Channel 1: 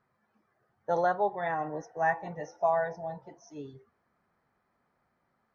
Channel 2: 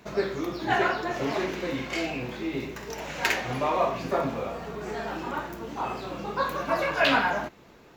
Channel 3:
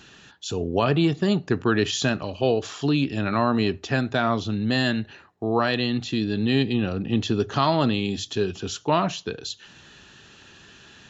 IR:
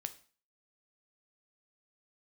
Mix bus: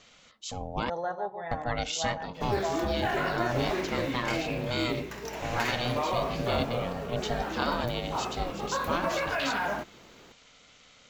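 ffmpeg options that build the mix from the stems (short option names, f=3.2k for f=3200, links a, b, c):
-filter_complex "[0:a]dynaudnorm=f=180:g=3:m=11dB,volume=-17dB,asplit=2[a][b];[b]volume=-8.5dB[c];[1:a]alimiter=limit=-19.5dB:level=0:latency=1:release=35,acrusher=bits=7:mode=log:mix=0:aa=0.000001,adelay=2350,volume=-1.5dB[d];[2:a]highshelf=f=4.1k:g=8,aeval=exprs='val(0)*sin(2*PI*360*n/s)':c=same,volume=-7dB,asplit=3[e][f][g];[e]atrim=end=0.9,asetpts=PTS-STARTPTS,afade=t=out:st=0.896:d=0.004:c=hsin[h];[f]atrim=start=0.9:end=1.51,asetpts=PTS-STARTPTS,volume=0[i];[g]atrim=start=1.51,asetpts=PTS-STARTPTS,afade=t=in:d=0.004:c=hsin[j];[h][i][j]concat=n=3:v=0:a=1[k];[c]aecho=0:1:142:1[l];[a][d][k][l]amix=inputs=4:normalize=0"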